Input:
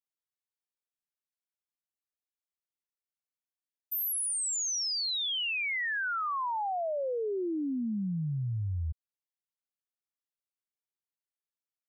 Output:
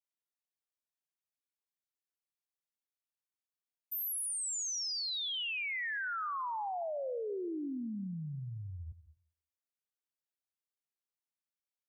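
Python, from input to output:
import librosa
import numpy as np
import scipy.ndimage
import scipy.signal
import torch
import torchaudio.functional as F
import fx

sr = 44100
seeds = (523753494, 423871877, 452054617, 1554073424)

y = fx.highpass(x, sr, hz=160.0, slope=6)
y = fx.rev_plate(y, sr, seeds[0], rt60_s=0.51, hf_ratio=0.55, predelay_ms=120, drr_db=14.5)
y = y * 10.0 ** (-5.0 / 20.0)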